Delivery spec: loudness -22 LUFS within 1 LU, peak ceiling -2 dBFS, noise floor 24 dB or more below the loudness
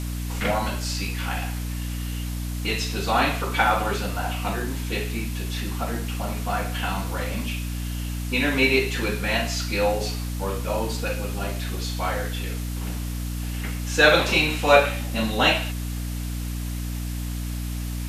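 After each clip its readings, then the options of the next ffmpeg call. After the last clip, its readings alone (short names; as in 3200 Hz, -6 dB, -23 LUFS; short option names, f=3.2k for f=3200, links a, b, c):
hum 60 Hz; harmonics up to 300 Hz; hum level -27 dBFS; noise floor -29 dBFS; noise floor target -49 dBFS; loudness -25.0 LUFS; peak -3.5 dBFS; loudness target -22.0 LUFS
-> -af "bandreject=f=60:t=h:w=4,bandreject=f=120:t=h:w=4,bandreject=f=180:t=h:w=4,bandreject=f=240:t=h:w=4,bandreject=f=300:t=h:w=4"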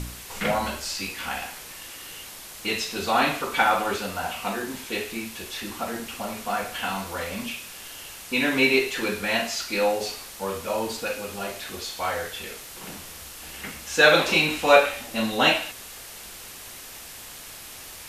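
hum none; noise floor -42 dBFS; noise floor target -49 dBFS
-> -af "afftdn=nr=7:nf=-42"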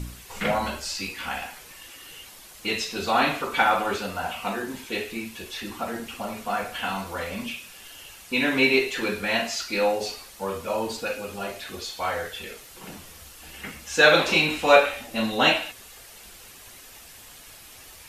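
noise floor -47 dBFS; noise floor target -49 dBFS
-> -af "afftdn=nr=6:nf=-47"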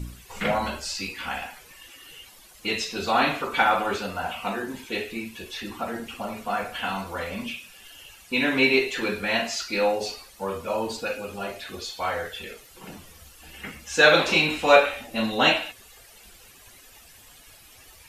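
noise floor -51 dBFS; loudness -25.0 LUFS; peak -3.5 dBFS; loudness target -22.0 LUFS
-> -af "volume=3dB,alimiter=limit=-2dB:level=0:latency=1"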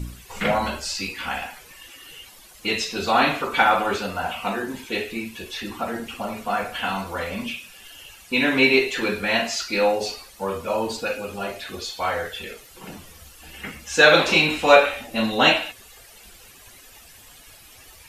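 loudness -22.0 LUFS; peak -2.0 dBFS; noise floor -48 dBFS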